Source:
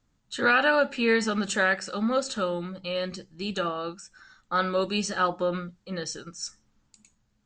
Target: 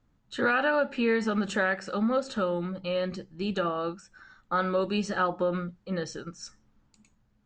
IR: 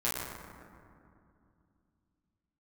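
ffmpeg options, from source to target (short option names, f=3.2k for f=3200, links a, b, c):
-af "lowpass=f=1.7k:p=1,acompressor=threshold=-28dB:ratio=2,volume=3dB"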